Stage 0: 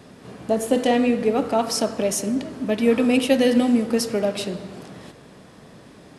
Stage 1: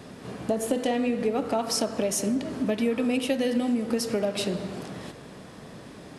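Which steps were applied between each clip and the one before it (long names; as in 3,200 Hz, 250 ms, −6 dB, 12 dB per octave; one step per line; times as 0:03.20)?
downward compressor 5 to 1, threshold −25 dBFS, peak gain reduction 12 dB
level +2 dB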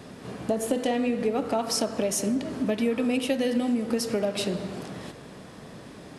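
no processing that can be heard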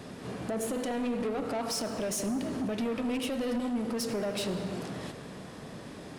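brickwall limiter −19 dBFS, peak gain reduction 7 dB
soft clipping −28 dBFS, distortion −11 dB
on a send at −13.5 dB: convolution reverb RT60 2.0 s, pre-delay 68 ms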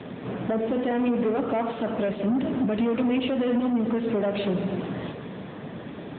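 level +7.5 dB
AMR narrowband 10.2 kbit/s 8,000 Hz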